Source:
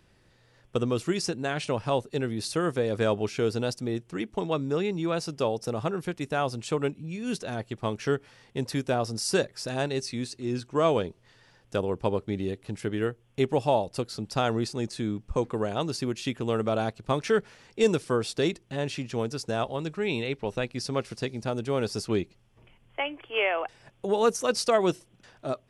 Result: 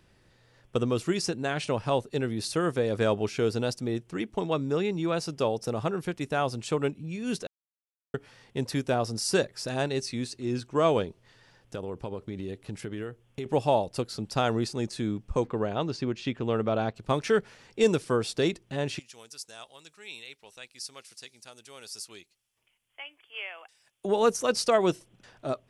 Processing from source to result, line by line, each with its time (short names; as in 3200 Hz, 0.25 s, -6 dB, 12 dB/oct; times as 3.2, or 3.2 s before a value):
7.47–8.14 mute
11.04–13.46 compressor, threshold -31 dBFS
15.47–16.96 air absorption 120 m
18.99–24.05 pre-emphasis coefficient 0.97